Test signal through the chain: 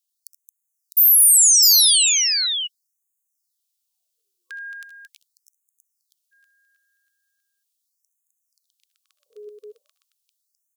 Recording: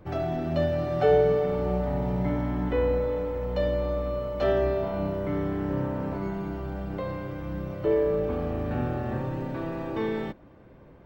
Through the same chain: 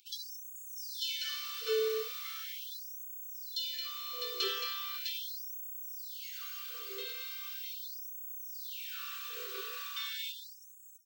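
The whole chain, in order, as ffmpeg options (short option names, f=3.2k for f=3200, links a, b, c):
-filter_complex "[0:a]afftfilt=real='re*(1-between(b*sr/4096,510,1100))':imag='im*(1-between(b*sr/4096,510,1100))':win_size=4096:overlap=0.75,aexciter=amount=13.5:drive=1.5:freq=2.8k,asplit=2[a][b];[b]aecho=0:1:66|78|222|654:0.15|0.188|0.422|0.596[c];[a][c]amix=inputs=2:normalize=0,afftfilt=real='re*gte(b*sr/1024,380*pow(6400/380,0.5+0.5*sin(2*PI*0.39*pts/sr)))':imag='im*gte(b*sr/1024,380*pow(6400/380,0.5+0.5*sin(2*PI*0.39*pts/sr)))':win_size=1024:overlap=0.75,volume=-6.5dB"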